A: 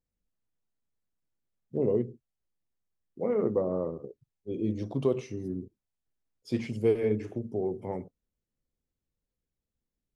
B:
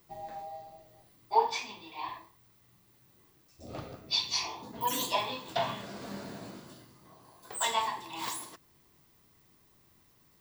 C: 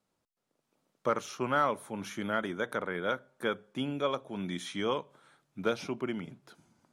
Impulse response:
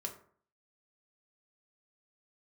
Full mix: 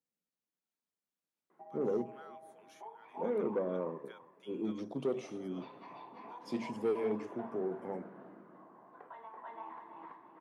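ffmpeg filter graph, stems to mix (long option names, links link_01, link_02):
-filter_complex "[0:a]asoftclip=type=tanh:threshold=-20.5dB,volume=-4.5dB,asplit=2[link_01][link_02];[link_02]volume=-24dB[link_03];[1:a]lowpass=frequency=1600:width=0.5412,lowpass=frequency=1600:width=1.3066,acompressor=threshold=-42dB:ratio=2,adelay=1500,volume=1dB,asplit=2[link_04][link_05];[link_05]volume=-9.5dB[link_06];[2:a]highpass=1100,adelay=650,volume=-17.5dB[link_07];[link_04][link_07]amix=inputs=2:normalize=0,highpass=260,acompressor=threshold=-54dB:ratio=2.5,volume=0dB[link_08];[link_03][link_06]amix=inputs=2:normalize=0,aecho=0:1:332|664|996|1328:1|0.31|0.0961|0.0298[link_09];[link_01][link_08][link_09]amix=inputs=3:normalize=0,highpass=frequency=170:width=0.5412,highpass=frequency=170:width=1.3066"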